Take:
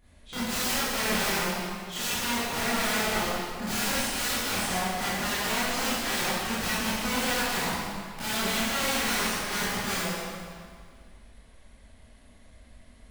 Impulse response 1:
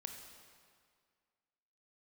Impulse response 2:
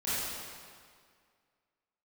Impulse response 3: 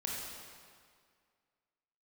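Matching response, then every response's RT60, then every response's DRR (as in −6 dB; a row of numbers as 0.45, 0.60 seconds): 2; 2.0, 2.0, 2.0 seconds; 4.0, −13.0, −3.5 decibels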